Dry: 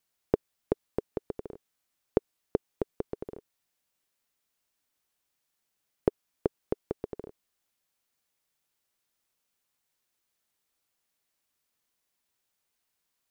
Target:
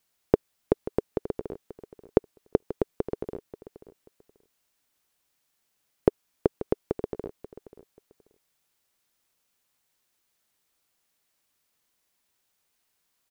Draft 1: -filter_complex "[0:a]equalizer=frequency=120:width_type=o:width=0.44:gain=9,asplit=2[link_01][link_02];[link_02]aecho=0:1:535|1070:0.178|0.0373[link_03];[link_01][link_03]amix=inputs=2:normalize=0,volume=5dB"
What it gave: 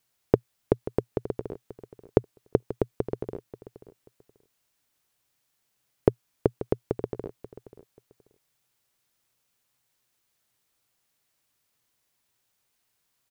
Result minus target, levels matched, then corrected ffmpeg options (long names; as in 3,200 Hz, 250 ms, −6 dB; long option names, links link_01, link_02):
125 Hz band +4.0 dB
-filter_complex "[0:a]asplit=2[link_01][link_02];[link_02]aecho=0:1:535|1070:0.178|0.0373[link_03];[link_01][link_03]amix=inputs=2:normalize=0,volume=5dB"